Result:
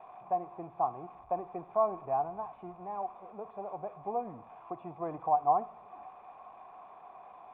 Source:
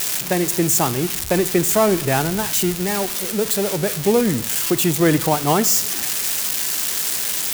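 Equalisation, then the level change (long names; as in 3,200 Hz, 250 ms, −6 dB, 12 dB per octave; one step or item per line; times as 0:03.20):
formant resonators in series a
high-frequency loss of the air 160 metres
0.0 dB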